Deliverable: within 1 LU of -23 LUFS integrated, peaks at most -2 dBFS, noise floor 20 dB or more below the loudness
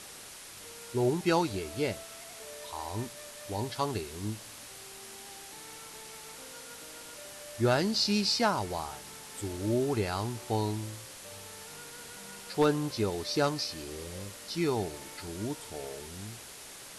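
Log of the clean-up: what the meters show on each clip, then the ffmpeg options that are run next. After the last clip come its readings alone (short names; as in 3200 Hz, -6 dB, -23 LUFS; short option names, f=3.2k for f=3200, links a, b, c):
noise floor -47 dBFS; noise floor target -52 dBFS; loudness -32.0 LUFS; peak -15.5 dBFS; loudness target -23.0 LUFS
-> -af "afftdn=nr=6:nf=-47"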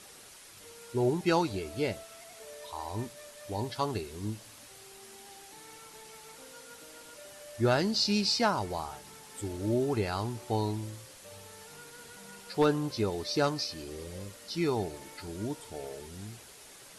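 noise floor -52 dBFS; loudness -32.0 LUFS; peak -15.5 dBFS; loudness target -23.0 LUFS
-> -af "volume=9dB"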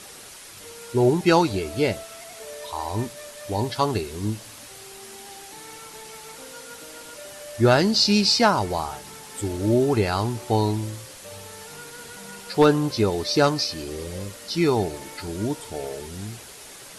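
loudness -23.0 LUFS; peak -6.5 dBFS; noise floor -43 dBFS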